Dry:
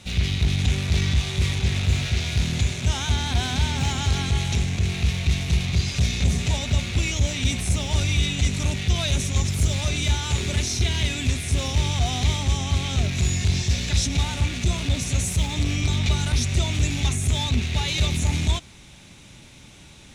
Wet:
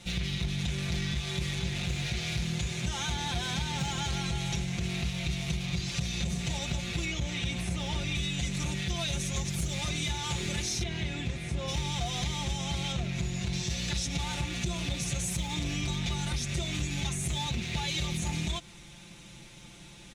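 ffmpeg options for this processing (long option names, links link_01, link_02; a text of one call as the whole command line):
ffmpeg -i in.wav -filter_complex "[0:a]asettb=1/sr,asplit=3[link_01][link_02][link_03];[link_01]atrim=end=7.054[link_04];[link_02]atrim=start=7.05:end=8.15,asetpts=PTS-STARTPTS,afade=type=in:duration=0.004:curve=qsin,afade=type=out:start_time=1.096:duration=0.004:curve=qsin,acrossover=split=4300[link_05][link_06];[link_06]acompressor=threshold=-40dB:ratio=4:attack=1:release=60[link_07];[link_05][link_07]amix=inputs=2:normalize=0[link_08];[link_03]atrim=start=8.146[link_09];[link_04][link_08]acrossfade=duration=0.004:curve1=hsin:curve2=qsin[link_10];[link_10][link_09]acrossfade=duration=0.004:curve1=qsin:curve2=hsin,asettb=1/sr,asplit=3[link_11][link_12][link_13];[link_11]atrim=end=10.834[link_14];[link_12]atrim=start=10.83:end=11.68,asetpts=PTS-STARTPTS,afade=type=in:duration=0.004:curve=qsin,afade=type=out:start_time=0.846:duration=0.004:curve=qsin,lowpass=frequency=1700:poles=1[link_15];[link_13]atrim=start=11.676[link_16];[link_14][link_15]acrossfade=duration=0.004:curve1=hsin:curve2=qsin[link_17];[link_17][link_16]acrossfade=duration=0.004:curve1=qsin:curve2=hsin,asettb=1/sr,asplit=3[link_18][link_19][link_20];[link_18]atrim=end=12.924[link_21];[link_19]atrim=start=12.92:end=13.53,asetpts=PTS-STARTPTS,afade=type=in:duration=0.004:curve=qsin,afade=type=out:start_time=0.606:duration=0.004:curve=qsin,highshelf=frequency=3800:gain=-8[link_22];[link_20]atrim=start=13.526[link_23];[link_21][link_22]acrossfade=duration=0.004:curve1=hsin:curve2=qsin[link_24];[link_24][link_23]acrossfade=duration=0.004:curve1=qsin:curve2=hsin,aecho=1:1:5.8:0.85,acompressor=threshold=-23dB:ratio=6,volume=-5dB" out.wav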